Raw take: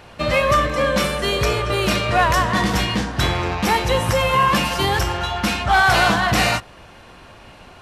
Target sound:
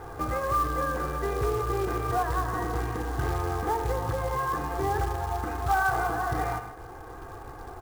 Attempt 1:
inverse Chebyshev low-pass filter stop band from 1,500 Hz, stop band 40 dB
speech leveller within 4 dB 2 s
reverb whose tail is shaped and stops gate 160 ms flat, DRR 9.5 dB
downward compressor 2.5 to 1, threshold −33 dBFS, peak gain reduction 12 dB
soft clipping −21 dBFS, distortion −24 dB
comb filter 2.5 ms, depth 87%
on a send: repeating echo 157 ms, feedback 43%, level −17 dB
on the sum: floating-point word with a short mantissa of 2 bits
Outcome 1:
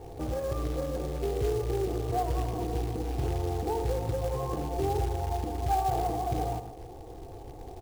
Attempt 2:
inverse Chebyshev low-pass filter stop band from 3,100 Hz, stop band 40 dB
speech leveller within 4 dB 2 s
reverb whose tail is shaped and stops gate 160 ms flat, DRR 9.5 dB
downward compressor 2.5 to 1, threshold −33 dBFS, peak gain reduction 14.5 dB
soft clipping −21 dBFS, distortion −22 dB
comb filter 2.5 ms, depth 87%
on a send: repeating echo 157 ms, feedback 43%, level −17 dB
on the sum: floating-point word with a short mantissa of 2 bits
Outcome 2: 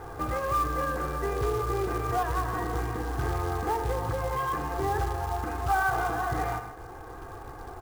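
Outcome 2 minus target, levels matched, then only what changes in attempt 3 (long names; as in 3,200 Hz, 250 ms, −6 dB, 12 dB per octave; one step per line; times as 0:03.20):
soft clipping: distortion +12 dB
change: soft clipping −14 dBFS, distortion −35 dB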